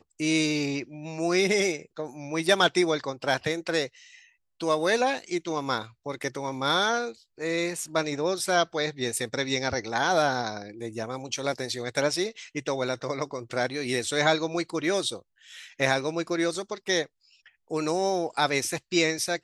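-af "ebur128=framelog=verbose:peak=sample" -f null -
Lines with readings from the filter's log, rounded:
Integrated loudness:
  I:         -27.2 LUFS
  Threshold: -37.6 LUFS
Loudness range:
  LRA:         3.2 LU
  Threshold: -47.8 LUFS
  LRA low:   -29.2 LUFS
  LRA high:  -26.0 LUFS
Sample peak:
  Peak:       -7.8 dBFS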